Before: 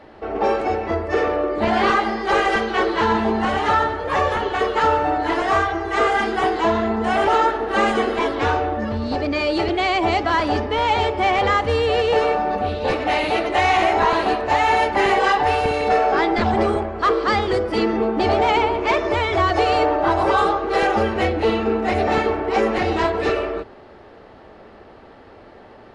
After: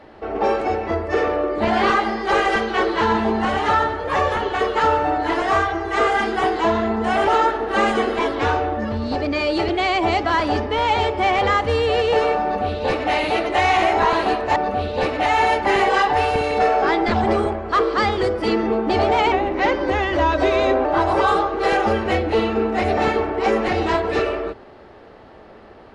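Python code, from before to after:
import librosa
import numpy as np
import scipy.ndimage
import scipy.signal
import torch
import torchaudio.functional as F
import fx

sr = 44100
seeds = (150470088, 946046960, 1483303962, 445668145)

y = fx.edit(x, sr, fx.duplicate(start_s=12.43, length_s=0.7, to_s=14.56),
    fx.speed_span(start_s=18.62, length_s=1.33, speed=0.87), tone=tone)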